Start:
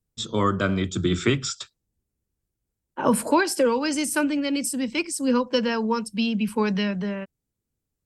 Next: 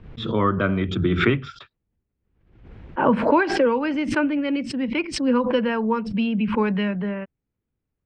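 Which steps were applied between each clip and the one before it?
low-pass filter 2,700 Hz 24 dB per octave
background raised ahead of every attack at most 70 dB per second
level +1.5 dB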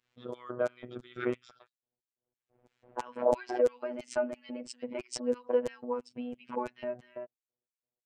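auto-filter band-pass square 3 Hz 610–7,300 Hz
phases set to zero 123 Hz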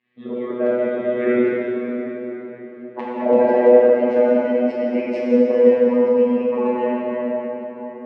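loudspeaker in its box 160–3,000 Hz, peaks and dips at 230 Hz +9 dB, 400 Hz +3 dB, 950 Hz −4 dB, 1,400 Hz −9 dB, 2,000 Hz +7 dB
dense smooth reverb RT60 4.6 s, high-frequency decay 0.6×, DRR −8 dB
level +6 dB

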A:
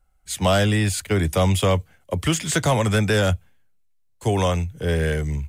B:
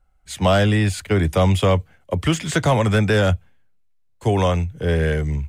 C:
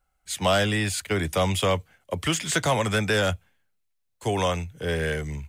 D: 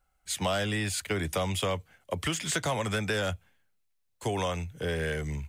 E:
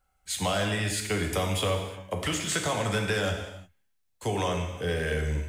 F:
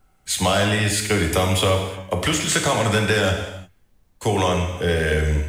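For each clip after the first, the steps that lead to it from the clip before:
high-shelf EQ 5,400 Hz −11 dB; level +2.5 dB
spectral tilt +2 dB per octave; level −3.5 dB
downward compressor 2.5 to 1, threshold −29 dBFS, peak gain reduction 8 dB
reverb whose tail is shaped and stops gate 380 ms falling, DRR 2.5 dB
background noise brown −68 dBFS; level +8.5 dB

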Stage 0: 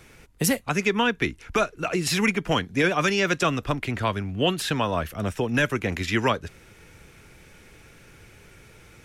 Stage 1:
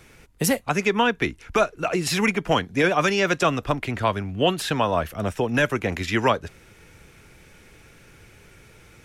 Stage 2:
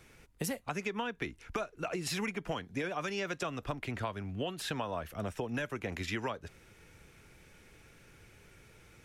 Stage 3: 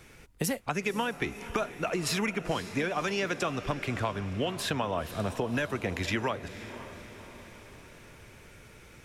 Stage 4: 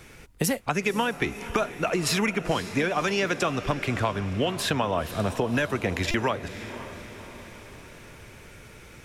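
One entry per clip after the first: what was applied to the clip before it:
dynamic equaliser 720 Hz, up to +5 dB, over −36 dBFS, Q 1
downward compressor 10 to 1, threshold −24 dBFS, peak gain reduction 10.5 dB; level −8 dB
feedback delay with all-pass diffusion 527 ms, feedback 54%, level −13 dB; level +5.5 dB
buffer that repeats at 0:06.11, samples 128, times 10; level +5 dB

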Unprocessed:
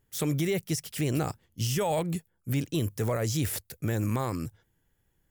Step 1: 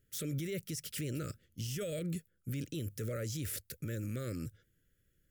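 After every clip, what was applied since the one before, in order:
elliptic band-stop filter 580–1,300 Hz, stop band 40 dB
brickwall limiter −28.5 dBFS, peak gain reduction 10 dB
level −2 dB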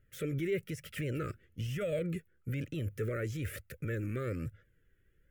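high shelf with overshoot 3,200 Hz −12 dB, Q 1.5
flanger 1.1 Hz, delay 1.4 ms, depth 1.4 ms, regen +39%
level +8 dB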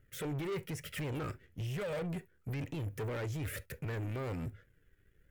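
soft clipping −36 dBFS, distortion −11 dB
on a send at −11.5 dB: convolution reverb, pre-delay 3 ms
on the sum: leveller curve on the samples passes 1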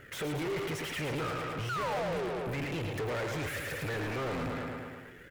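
sound drawn into the spectrogram fall, 0:01.69–0:02.29, 340–1,500 Hz −39 dBFS
repeating echo 110 ms, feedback 58%, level −9 dB
mid-hump overdrive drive 33 dB, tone 2,600 Hz, clips at −28 dBFS

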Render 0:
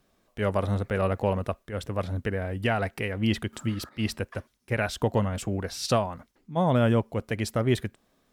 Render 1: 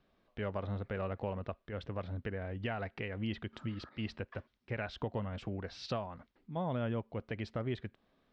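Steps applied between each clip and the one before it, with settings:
downward compressor 2 to 1, threshold −35 dBFS, peak gain reduction 9.5 dB
low-pass filter 4,200 Hz 24 dB per octave
level −4.5 dB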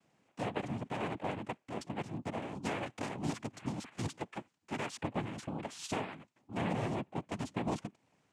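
cochlear-implant simulation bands 4
level +1 dB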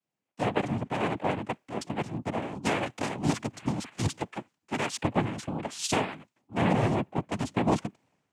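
multiband upward and downward expander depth 70%
level +8.5 dB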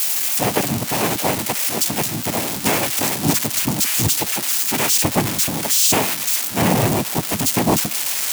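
spike at every zero crossing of −17.5 dBFS
level +7.5 dB

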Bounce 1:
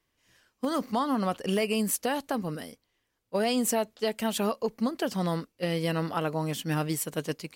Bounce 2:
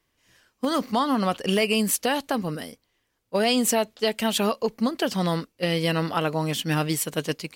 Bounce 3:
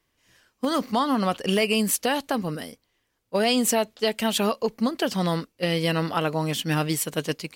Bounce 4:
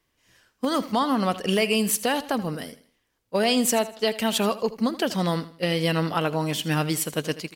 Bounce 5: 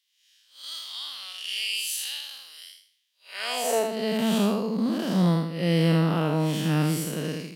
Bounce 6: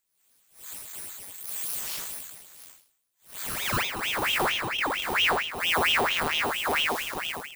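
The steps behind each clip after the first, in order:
dynamic equaliser 3,300 Hz, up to +5 dB, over −46 dBFS, Q 0.8; level +4 dB
no processing that can be heard
repeating echo 80 ms, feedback 37%, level −16 dB
spectrum smeared in time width 177 ms; high-pass filter sweep 3,400 Hz → 180 Hz, 0:03.20–0:04.01
samples in bit-reversed order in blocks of 16 samples; ring modulator whose carrier an LFO sweeps 1,800 Hz, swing 70%, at 4.4 Hz

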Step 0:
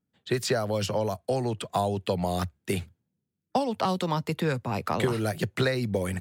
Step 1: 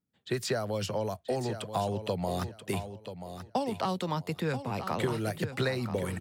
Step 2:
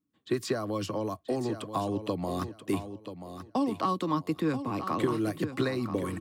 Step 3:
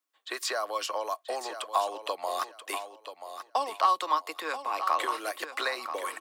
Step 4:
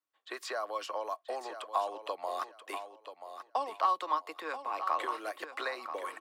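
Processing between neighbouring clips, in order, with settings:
repeating echo 983 ms, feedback 23%, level −10 dB; level −4.5 dB
hollow resonant body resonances 300/1,100 Hz, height 17 dB, ringing for 65 ms; level −3 dB
high-pass filter 640 Hz 24 dB per octave; level +6.5 dB
high-shelf EQ 3,400 Hz −10.5 dB; level −3.5 dB

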